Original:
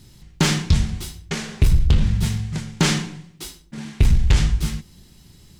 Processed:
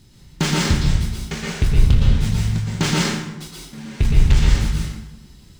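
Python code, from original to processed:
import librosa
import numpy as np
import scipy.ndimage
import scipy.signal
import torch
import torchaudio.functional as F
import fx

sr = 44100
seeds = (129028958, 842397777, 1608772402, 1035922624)

y = scipy.signal.medfilt(x, 3)
y = fx.rev_plate(y, sr, seeds[0], rt60_s=0.91, hf_ratio=0.7, predelay_ms=105, drr_db=-3.0)
y = F.gain(torch.from_numpy(y), -2.5).numpy()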